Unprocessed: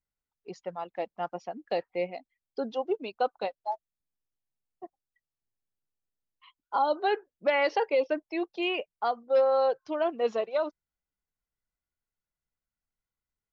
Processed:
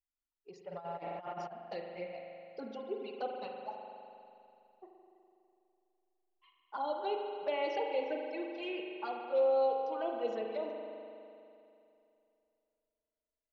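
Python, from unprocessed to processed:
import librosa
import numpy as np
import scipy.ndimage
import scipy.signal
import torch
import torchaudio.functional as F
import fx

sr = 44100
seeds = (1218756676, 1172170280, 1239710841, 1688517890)

y = fx.env_flanger(x, sr, rest_ms=3.0, full_db=-22.5)
y = fx.rev_spring(y, sr, rt60_s=2.7, pass_ms=(41,), chirp_ms=35, drr_db=1.0)
y = fx.over_compress(y, sr, threshold_db=-39.0, ratio=-0.5, at=(0.71, 1.51), fade=0.02)
y = y * 10.0 ** (-8.0 / 20.0)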